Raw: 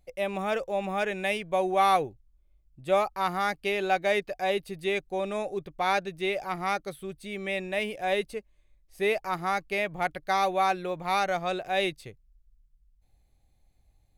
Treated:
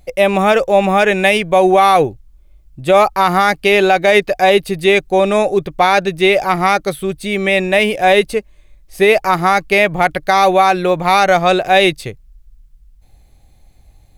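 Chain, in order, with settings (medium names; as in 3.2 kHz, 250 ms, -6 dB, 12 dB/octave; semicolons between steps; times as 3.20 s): loudness maximiser +19 dB; trim -1 dB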